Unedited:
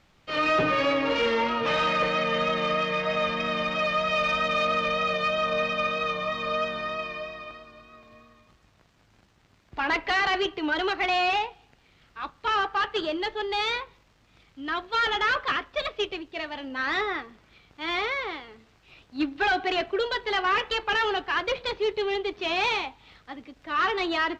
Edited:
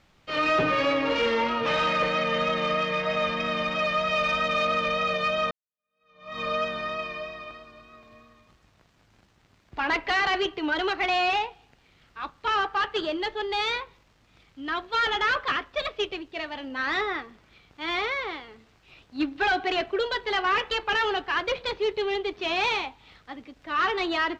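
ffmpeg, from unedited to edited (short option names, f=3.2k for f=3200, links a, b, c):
-filter_complex "[0:a]asplit=2[a][b];[a]atrim=end=5.51,asetpts=PTS-STARTPTS,afade=t=out:st=5.506:d=0.004:c=hsin[c];[b]atrim=start=5.51,asetpts=PTS-STARTPTS,afade=t=in:d=0.88:c=exp[d];[c][d]concat=n=2:v=0:a=1"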